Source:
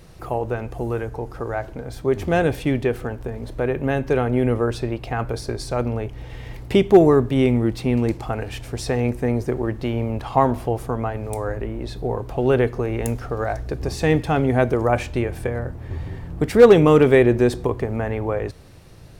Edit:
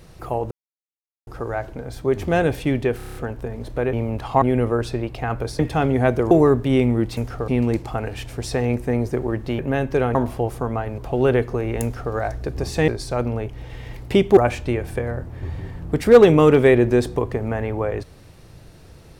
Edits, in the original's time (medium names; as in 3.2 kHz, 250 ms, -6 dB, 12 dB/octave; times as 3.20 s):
0.51–1.27 s: mute
2.97 s: stutter 0.03 s, 7 plays
3.75–4.31 s: swap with 9.94–10.43 s
5.48–6.97 s: swap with 14.13–14.85 s
11.26–12.23 s: delete
13.08–13.39 s: copy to 7.83 s